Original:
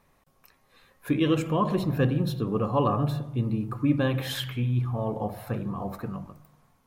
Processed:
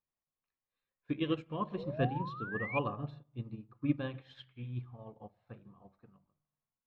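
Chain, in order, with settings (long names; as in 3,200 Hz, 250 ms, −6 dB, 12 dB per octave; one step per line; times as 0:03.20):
sound drawn into the spectrogram rise, 0:01.77–0:02.79, 450–2,500 Hz −28 dBFS
transistor ladder low-pass 4,900 Hz, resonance 25%
expander for the loud parts 2.5 to 1, over −43 dBFS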